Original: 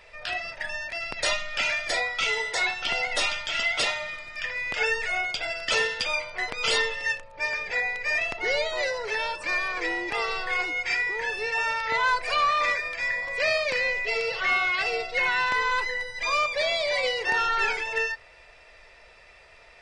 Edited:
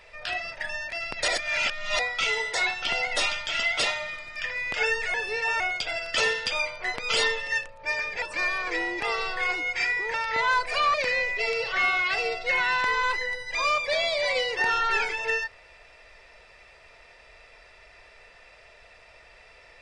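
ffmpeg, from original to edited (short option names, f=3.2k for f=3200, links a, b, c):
-filter_complex "[0:a]asplit=8[a][b][c][d][e][f][g][h];[a]atrim=end=1.282[i];[b]atrim=start=1.278:end=1.992,asetpts=PTS-STARTPTS,areverse[j];[c]atrim=start=1.988:end=5.142[k];[d]atrim=start=11.238:end=11.702[l];[e]atrim=start=5.138:end=7.762[m];[f]atrim=start=9.318:end=11.242[n];[g]atrim=start=11.698:end=12.502[o];[h]atrim=start=13.618[p];[i][j]acrossfade=d=0.004:c1=hsin:c2=hsin[q];[q][k]acrossfade=d=0.004:c1=hsin:c2=hsin[r];[r][l]acrossfade=d=0.004:c1=hsin:c2=hsin[s];[s][m]acrossfade=d=0.004:c1=hsin:c2=hsin[t];[t][n]acrossfade=d=0.004:c1=hsin:c2=hsin[u];[u][o]acrossfade=d=0.004:c1=hsin:c2=hsin[v];[v][p]acrossfade=d=0.004:c1=hsin:c2=hsin"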